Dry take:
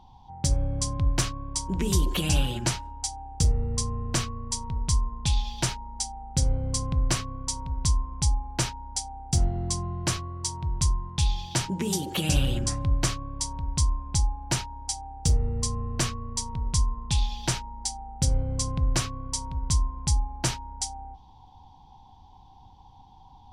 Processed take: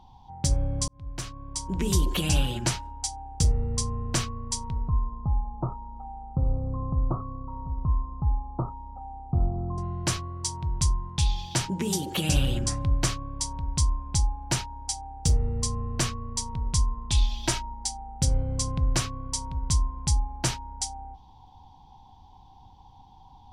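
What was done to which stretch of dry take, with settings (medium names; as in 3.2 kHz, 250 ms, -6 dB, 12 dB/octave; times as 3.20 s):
0.88–1.86 s: fade in
4.88–9.78 s: Chebyshev low-pass 1.3 kHz, order 8
17.10–17.74 s: comb 3.1 ms, depth 57%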